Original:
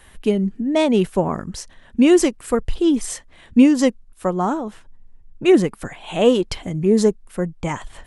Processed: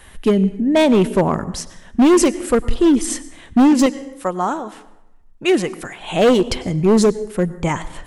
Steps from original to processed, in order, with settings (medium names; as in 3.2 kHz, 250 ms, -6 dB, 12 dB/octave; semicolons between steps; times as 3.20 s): 3.86–6.01 s: bass shelf 490 Hz -11 dB; plate-style reverb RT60 0.89 s, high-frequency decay 0.65×, pre-delay 85 ms, DRR 16.5 dB; overload inside the chain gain 13 dB; trim +4.5 dB